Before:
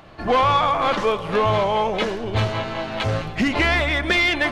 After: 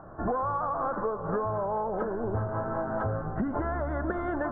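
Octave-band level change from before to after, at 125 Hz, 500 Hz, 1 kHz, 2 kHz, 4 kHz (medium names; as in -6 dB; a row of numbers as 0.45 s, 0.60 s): -8.0 dB, -8.0 dB, -9.5 dB, -19.5 dB, under -40 dB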